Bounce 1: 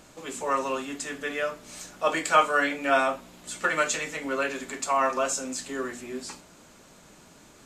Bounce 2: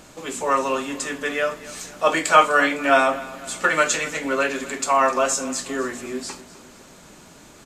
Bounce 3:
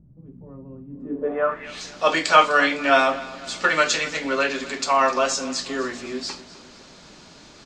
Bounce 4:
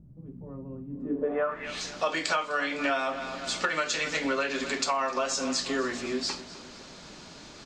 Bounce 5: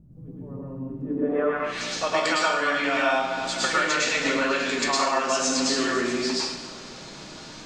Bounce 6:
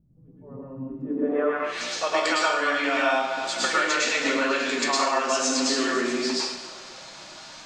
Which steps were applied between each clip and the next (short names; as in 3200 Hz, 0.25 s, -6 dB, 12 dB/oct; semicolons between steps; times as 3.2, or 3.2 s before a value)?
feedback echo 0.254 s, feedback 50%, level -18 dB; gain +6 dB
low-pass sweep 140 Hz -> 4800 Hz, 0.89–1.84; gain -1 dB
compressor 20:1, threshold -24 dBFS, peak gain reduction 17 dB
reverb RT60 0.70 s, pre-delay 0.1 s, DRR -4.5 dB
spectral noise reduction 11 dB